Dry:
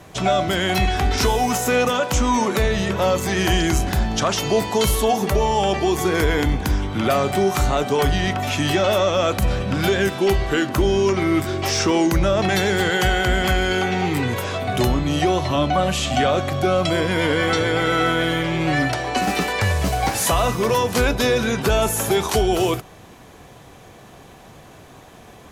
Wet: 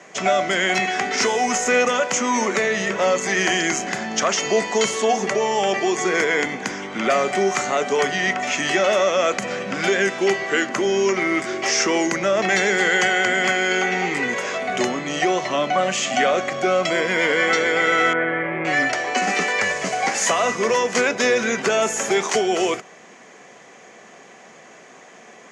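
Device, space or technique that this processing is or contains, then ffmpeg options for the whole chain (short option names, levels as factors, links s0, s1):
television speaker: -filter_complex "[0:a]asettb=1/sr,asplit=3[s0][s1][s2];[s0]atrim=end=4.204[s3];[s1]atrim=start=4.2:end=6.17,asetpts=PTS-STARTPTS,afade=t=in:d=0.004:c=qsin,afade=t=out:st=1.966:d=0.004:c=qsin,lowpass=f=10000:w=0.5412,lowpass=f=10000:w=1.3066[s4];[s2]atrim=start=6.166[s5];[s3][s4]acrossfade=d=0.004:c1=hsin:c2=qsin[s6];[s6][s5]acrossfade=d=0.004:c1=qsin:c2=hsin,asettb=1/sr,asplit=3[s7][s8][s9];[s7]atrim=end=18.134[s10];[s8]atrim=start=18.13:end=18.65,asetpts=PTS-STARTPTS,afade=t=in:d=0.004:c=qsin,afade=t=out:st=0.516:d=0.004:c=qsin,lowpass=f=2000:w=0.5412,lowpass=f=2000:w=1.3066[s11];[s9]atrim=start=18.646[s12];[s10][s11]acrossfade=d=0.004:c1=hsin:c2=qsin[s13];[s13][s12]acrossfade=d=0.004:c1=qsin:c2=hsin,highpass=f=220:w=0.5412,highpass=f=220:w=1.3066,equalizer=f=300:t=q:w=4:g=-8,equalizer=f=900:t=q:w=4:g=-4,equalizer=f=2000:t=q:w=4:g=8,equalizer=f=3800:t=q:w=4:g=-7,equalizer=f=6700:t=q:w=4:g=7,lowpass=f=7300:w=0.5412,lowpass=f=7300:w=1.3066,volume=1.12"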